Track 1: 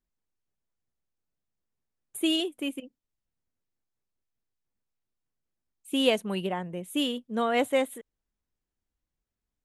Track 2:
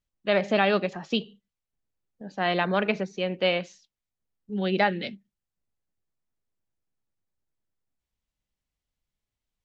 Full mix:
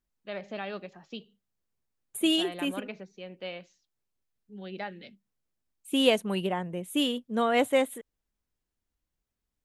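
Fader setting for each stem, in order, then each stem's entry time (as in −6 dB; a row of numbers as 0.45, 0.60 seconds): +1.0, −14.5 decibels; 0.00, 0.00 seconds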